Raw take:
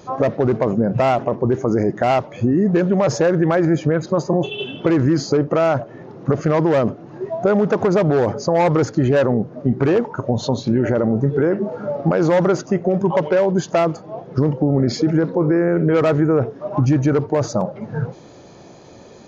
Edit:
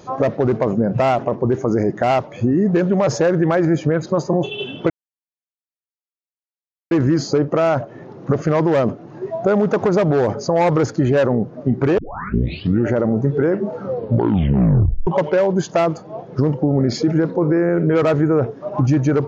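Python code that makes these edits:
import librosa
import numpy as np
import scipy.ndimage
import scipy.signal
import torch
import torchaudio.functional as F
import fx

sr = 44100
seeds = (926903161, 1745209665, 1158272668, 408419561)

y = fx.edit(x, sr, fx.insert_silence(at_s=4.9, length_s=2.01),
    fx.tape_start(start_s=9.97, length_s=0.89),
    fx.tape_stop(start_s=11.76, length_s=1.3), tone=tone)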